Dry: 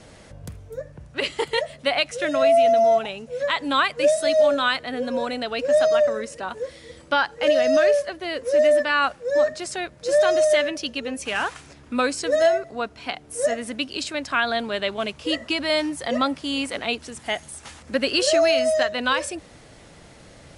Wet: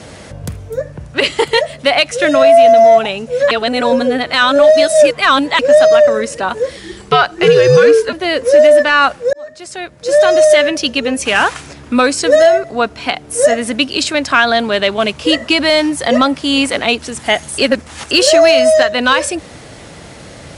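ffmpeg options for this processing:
ffmpeg -i in.wav -filter_complex "[0:a]asettb=1/sr,asplit=3[link_01][link_02][link_03];[link_01]atrim=end=6.774[link_04];[link_02]atrim=start=6.77:end=8.13,asetpts=PTS-STARTPTS,afade=type=in:duration=0.004:curve=qsin,afade=type=out:start_time=1.356:duration=0.004:curve=qsin,afreqshift=-130[link_05];[link_03]atrim=start=8.126[link_06];[link_04][link_05]acrossfade=duration=0.004:curve1=hsin:curve2=qsin[link_07];[link_07][link_06]acrossfade=duration=0.004:curve1=qsin:curve2=hsin,asplit=6[link_08][link_09][link_10][link_11][link_12][link_13];[link_08]atrim=end=3.512[link_14];[link_09]atrim=start=3.508:end=5.592,asetpts=PTS-STARTPTS,areverse[link_15];[link_10]atrim=start=5.588:end=9.33,asetpts=PTS-STARTPTS,afade=type=out:start_time=3.738:duration=0.004:curve=hsin[link_16];[link_11]atrim=start=9.33:end=17.582,asetpts=PTS-STARTPTS,afade=type=in:duration=1.4[link_17];[link_12]atrim=start=17.578:end=18.112,asetpts=PTS-STARTPTS,areverse[link_18];[link_13]atrim=start=18.108[link_19];[link_14][link_15]acrossfade=duration=0.004:curve1=hsin:curve2=hsin[link_20];[link_16][link_17]concat=n=2:v=0:a=1[link_21];[link_20][link_21]acrossfade=duration=0.004:curve1=hsin:curve2=hsin[link_22];[link_22][link_18]acrossfade=duration=0.004:curve1=hsin:curve2=hsin[link_23];[link_23][link_19]acrossfade=duration=0.004:curve1=hsin:curve2=hsin,highpass=51,acontrast=87,alimiter=limit=-7dB:level=0:latency=1:release=357,volume=6dB" out.wav

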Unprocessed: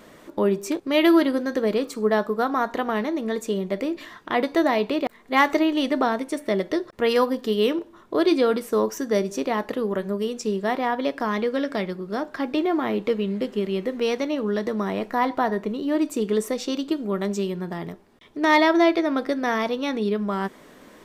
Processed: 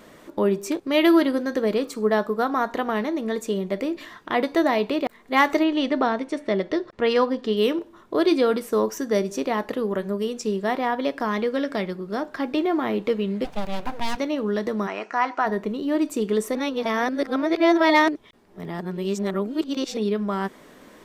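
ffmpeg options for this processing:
ffmpeg -i in.wav -filter_complex "[0:a]asettb=1/sr,asplit=3[link_01][link_02][link_03];[link_01]atrim=end=5.634[link_04];[link_02]atrim=start=5.63:end=7.57,asetpts=PTS-STARTPTS,afade=type=in:duration=0.004:curve=qsin,afade=type=out:start_time=1.936:duration=0.004:curve=qsin,lowpass=5200[link_05];[link_03]atrim=start=7.566[link_06];[link_04][link_05]acrossfade=duration=0.004:curve1=hsin:curve2=qsin[link_07];[link_07][link_06]acrossfade=duration=0.004:curve1=qsin:curve2=hsin,asplit=3[link_08][link_09][link_10];[link_08]afade=type=out:start_time=13.44:duration=0.02[link_11];[link_09]aeval=exprs='abs(val(0))':channel_layout=same,afade=type=in:start_time=13.44:duration=0.02,afade=type=out:start_time=14.16:duration=0.02[link_12];[link_10]afade=type=in:start_time=14.16:duration=0.02[link_13];[link_11][link_12][link_13]amix=inputs=3:normalize=0,asplit=3[link_14][link_15][link_16];[link_14]afade=type=out:start_time=14.86:duration=0.02[link_17];[link_15]highpass=430,equalizer=frequency=510:width_type=q:width=4:gain=-6,equalizer=frequency=1400:width_type=q:width=4:gain=7,equalizer=frequency=2600:width_type=q:width=4:gain=7,equalizer=frequency=3600:width_type=q:width=4:gain=-10,equalizer=frequency=6100:width_type=q:width=4:gain=6,lowpass=frequency=7200:width=0.5412,lowpass=frequency=7200:width=1.3066,afade=type=in:start_time=14.86:duration=0.02,afade=type=out:start_time=15.45:duration=0.02[link_18];[link_16]afade=type=in:start_time=15.45:duration=0.02[link_19];[link_17][link_18][link_19]amix=inputs=3:normalize=0,asplit=3[link_20][link_21][link_22];[link_20]atrim=end=16.552[link_23];[link_21]atrim=start=16.548:end=19.972,asetpts=PTS-STARTPTS,areverse[link_24];[link_22]atrim=start=19.968[link_25];[link_23][link_24]acrossfade=duration=0.004:curve1=hsin:curve2=hsin[link_26];[link_26][link_25]acrossfade=duration=0.004:curve1=hsin:curve2=hsin" out.wav

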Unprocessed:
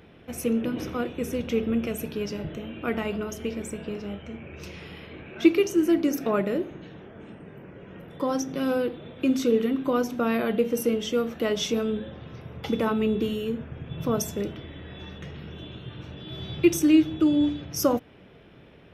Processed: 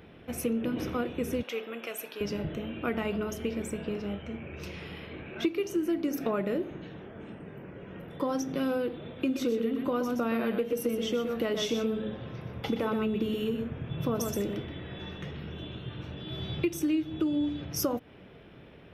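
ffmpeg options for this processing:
ffmpeg -i in.wav -filter_complex "[0:a]asettb=1/sr,asplit=3[link_01][link_02][link_03];[link_01]atrim=end=1.434[link_04];[link_02]atrim=start=1.43:end=2.21,asetpts=PTS-STARTPTS,afade=type=in:duration=0.004:curve=qsin,afade=type=out:start_time=0.776:duration=0.004:curve=qsin,highpass=690[link_05];[link_03]atrim=start=2.206[link_06];[link_04][link_05]acrossfade=duration=0.004:curve1=hsin:curve2=qsin[link_07];[link_07][link_06]acrossfade=duration=0.004:curve1=qsin:curve2=hsin,asettb=1/sr,asplit=3[link_08][link_09][link_10];[link_08]atrim=end=9.214[link_11];[link_09]atrim=start=9.21:end=15.34,asetpts=PTS-STARTPTS,afade=type=in:duration=0.004:curve=qsin,afade=type=out:start_time=6.126:duration=0.004:curve=qsin,aecho=1:1:123:0.473,atrim=end_sample=270333[link_12];[link_10]atrim=start=15.336[link_13];[link_11][link_12]acrossfade=duration=0.004:curve1=hsin:curve2=qsin[link_14];[link_14][link_13]acrossfade=duration=0.004:curve1=qsin:curve2=hsin,equalizer=frequency=6800:width_type=o:width=0.91:gain=-4,acompressor=threshold=-26dB:ratio=5" out.wav

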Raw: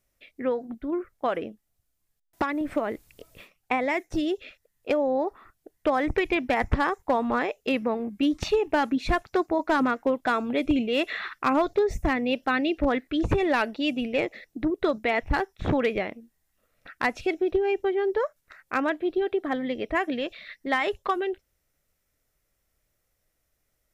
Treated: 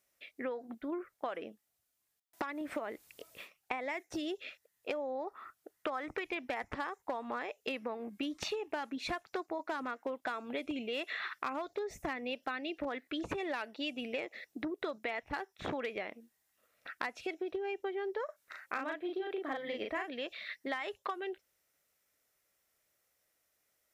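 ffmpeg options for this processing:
ffmpeg -i in.wav -filter_complex "[0:a]asettb=1/sr,asplit=3[link_01][link_02][link_03];[link_01]atrim=end=5.274[link_04];[link_02]atrim=start=5.27:end=6.26,asetpts=PTS-STARTPTS,afade=type=in:duration=0.004:curve=qsin,afade=type=out:start_time=0.986:duration=0.004:curve=qsin,equalizer=frequency=1300:width=4.3:gain=7.5[link_05];[link_03]atrim=start=6.256[link_06];[link_04][link_05]acrossfade=duration=0.004:curve1=hsin:curve2=qsin[link_07];[link_07][link_06]acrossfade=duration=0.004:curve1=qsin:curve2=hsin,asettb=1/sr,asplit=3[link_08][link_09][link_10];[link_08]atrim=end=18.254[link_11];[link_09]atrim=start=18.25:end=20.09,asetpts=PTS-STARTPTS,afade=type=in:duration=0.004:curve=qsin,afade=type=out:start_time=1.836:duration=0.004:curve=qsin,asplit=2[link_12][link_13];[link_13]adelay=37,volume=-2.5dB[link_14];[link_12][link_14]amix=inputs=2:normalize=0,atrim=end_sample=81144[link_15];[link_10]atrim=start=20.086[link_16];[link_11][link_15]acrossfade=duration=0.004:curve1=hsin:curve2=qsin[link_17];[link_17][link_16]acrossfade=duration=0.004:curve1=qsin:curve2=hsin,highpass=frequency=560:poles=1,acompressor=threshold=-35dB:ratio=6" out.wav

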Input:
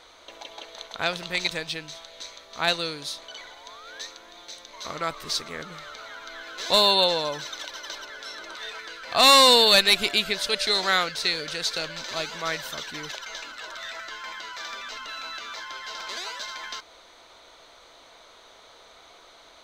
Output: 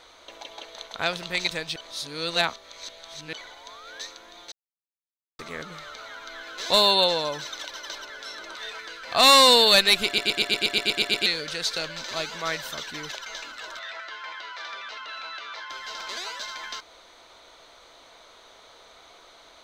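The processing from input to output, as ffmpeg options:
ffmpeg -i in.wav -filter_complex "[0:a]asettb=1/sr,asplit=3[link_01][link_02][link_03];[link_01]atrim=end=13.794[link_04];[link_02]atrim=start=13.79:end=15.7,asetpts=PTS-STARTPTS,afade=type=in:duration=0.004:curve=qsin,afade=type=out:start_time=1.906:duration=0.004:curve=qsin,acrossover=split=340 4900:gain=0.158 1 0.126[link_05][link_06][link_07];[link_05][link_06][link_07]amix=inputs=3:normalize=0[link_08];[link_03]atrim=start=15.696[link_09];[link_04][link_08]acrossfade=duration=0.004:curve1=hsin:curve2=qsin[link_10];[link_10][link_09]acrossfade=duration=0.004:curve1=qsin:curve2=hsin,asplit=15[link_11][link_12][link_13][link_14][link_15][link_16][link_17][link_18][link_19][link_20][link_21][link_22][link_23][link_24][link_25];[link_11]atrim=end=1.762[link_26];[link_12]atrim=start=1.758:end=3.332,asetpts=PTS-STARTPTS,areverse[link_27];[link_13]atrim=start=3.328:end=4.52,asetpts=PTS-STARTPTS,afade=type=out:start_time=1.188:duration=0.004:curve=hsin[link_28];[link_14]atrim=start=4.52:end=5.39,asetpts=PTS-STARTPTS,volume=0[link_29];[link_15]atrim=start=5.39:end=10.182,asetpts=PTS-STARTPTS,afade=type=in:duration=0.004:curve=hsin[link_30];[link_16]atrim=start=10.058:end=10.182[link_31];[link_17]atrim=start=10.058:end=10.182[link_32];[link_18]atrim=start=10.058:end=10.182[link_33];[link_19]atrim=start=10.058:end=10.182[link_34];[link_20]atrim=start=10.058:end=10.182[link_35];[link_21]atrim=start=10.058:end=10.182[link_36];[link_22]atrim=start=10.058:end=10.182[link_37];[link_23]atrim=start=10.058:end=10.182[link_38];[link_24]atrim=start=10.058:end=10.182[link_39];[link_25]atrim=start=11.258[link_40];[link_26][link_27]acrossfade=duration=0.004:curve1=hsin:curve2=hsin[link_41];[link_28][link_29][link_30]concat=n=3:v=0:a=1[link_42];[link_41][link_42]acrossfade=duration=0.004:curve1=hsin:curve2=hsin[link_43];[link_43][link_31]acrossfade=duration=0.004:curve1=hsin:curve2=hsin[link_44];[link_44][link_32]acrossfade=duration=0.004:curve1=hsin:curve2=hsin[link_45];[link_45][link_33]acrossfade=duration=0.004:curve1=hsin:curve2=hsin[link_46];[link_46][link_34]acrossfade=duration=0.004:curve1=hsin:curve2=hsin[link_47];[link_47][link_35]acrossfade=duration=0.004:curve1=hsin:curve2=hsin[link_48];[link_48][link_36]acrossfade=duration=0.004:curve1=hsin:curve2=hsin[link_49];[link_49][link_37]acrossfade=duration=0.004:curve1=hsin:curve2=hsin[link_50];[link_50][link_38]acrossfade=duration=0.004:curve1=hsin:curve2=hsin[link_51];[link_51][link_39]acrossfade=duration=0.004:curve1=hsin:curve2=hsin[link_52];[link_52][link_40]acrossfade=duration=0.004:curve1=hsin:curve2=hsin" out.wav

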